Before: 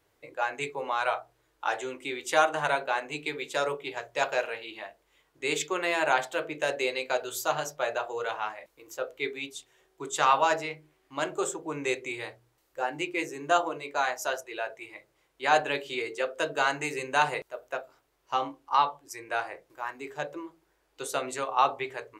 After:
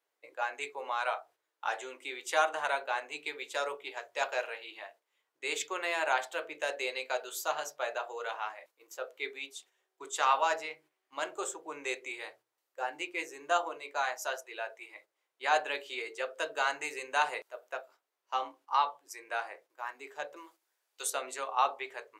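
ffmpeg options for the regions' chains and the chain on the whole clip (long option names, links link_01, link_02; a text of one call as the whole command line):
ffmpeg -i in.wav -filter_complex "[0:a]asettb=1/sr,asplit=3[link_01][link_02][link_03];[link_01]atrim=end=20.364[link_04];[link_02]atrim=start=20.36:end=21.1,asetpts=PTS-STARTPTS,afade=type=in:duration=0.004:curve=qsin,afade=type=out:start_time=0.736:duration=0.004:curve=qsin,highpass=frequency=390:poles=1,highshelf=frequency=3400:gain=11[link_05];[link_03]atrim=start=21.096[link_06];[link_04][link_05]acrossfade=duration=0.004:curve1=hsin:curve2=qsin[link_07];[link_07][link_06]acrossfade=duration=0.004:curve1=qsin:curve2=hsin,agate=range=-8dB:threshold=-52dB:ratio=16:detection=peak,highpass=500,volume=-4dB" out.wav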